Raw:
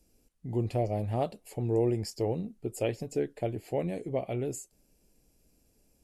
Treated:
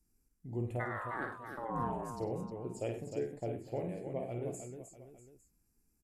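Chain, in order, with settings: touch-sensitive phaser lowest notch 550 Hz, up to 4.8 kHz, full sweep at -30 dBFS; 0.79–2.19 s: ring modulator 1.4 kHz -> 430 Hz; multi-tap echo 51/98/122/309/644/854 ms -6/-12/-19/-7/-16/-19.5 dB; trim -8 dB

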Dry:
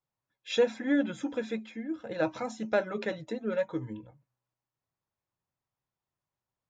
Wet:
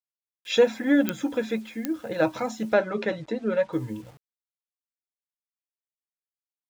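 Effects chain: word length cut 10-bit, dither none; 2.73–3.73 s: distance through air 83 m; clicks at 1.09/1.85 s, -15 dBFS; trim +6 dB

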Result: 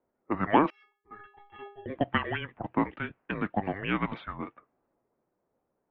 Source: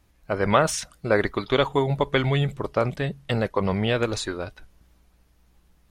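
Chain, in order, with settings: mistuned SSB -300 Hz 530–3000 Hz; level-controlled noise filter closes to 690 Hz, open at -24 dBFS; 0.70–1.86 s: inharmonic resonator 400 Hz, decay 0.42 s, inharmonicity 0.008; trim -1.5 dB

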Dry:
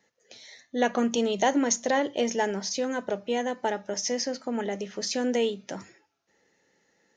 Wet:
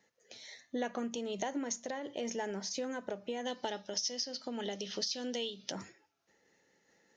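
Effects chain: 3.45–5.72 s: high-order bell 4.1 kHz +13.5 dB 1.2 oct; compression 6:1, threshold -32 dBFS, peak gain reduction 16 dB; random flutter of the level, depth 55%

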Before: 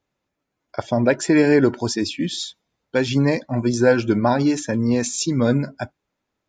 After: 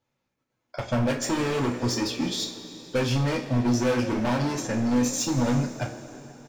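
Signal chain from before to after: in parallel at -2 dB: level held to a coarse grid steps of 10 dB; on the sum: feedback comb 62 Hz, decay 0.3 s, harmonics all, mix 60%; on a send: frequency-shifting echo 158 ms, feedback 63%, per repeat +35 Hz, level -19 dB; on the sum: hard clipper -22.5 dBFS, distortion -5 dB; transient shaper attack +3 dB, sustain -6 dB; two-slope reverb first 0.27 s, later 3.7 s, from -19 dB, DRR -0.5 dB; trim -3.5 dB

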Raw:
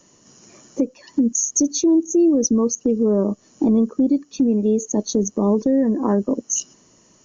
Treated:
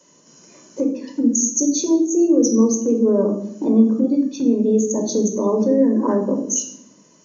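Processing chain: high-pass 130 Hz 24 dB/octave; reverberation RT60 0.70 s, pre-delay 3 ms, DRR 2.5 dB; trim -3 dB

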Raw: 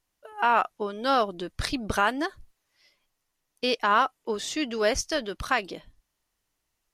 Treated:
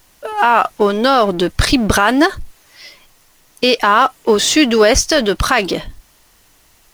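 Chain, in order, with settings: companding laws mixed up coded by mu; loudness maximiser +18 dB; trim -1 dB

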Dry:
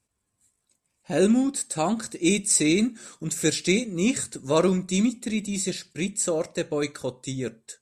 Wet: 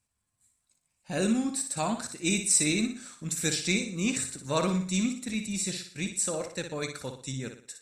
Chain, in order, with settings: peaking EQ 390 Hz -9 dB 1.2 oct; flutter echo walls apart 10.2 m, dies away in 0.46 s; trim -2.5 dB

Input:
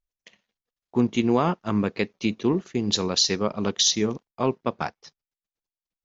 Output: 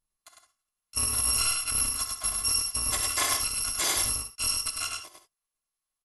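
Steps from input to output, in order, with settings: bit-reversed sample order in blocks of 256 samples; peaking EQ 1.1 kHz +14 dB 0.23 oct; saturation -20.5 dBFS, distortion -10 dB; on a send: delay 102 ms -3.5 dB; on the sum: gated-style reverb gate 90 ms rising, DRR 8.5 dB; MP2 96 kbps 44.1 kHz

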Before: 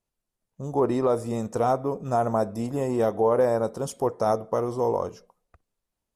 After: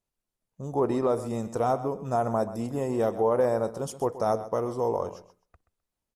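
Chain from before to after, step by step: feedback delay 129 ms, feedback 18%, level -14.5 dB; trim -2.5 dB

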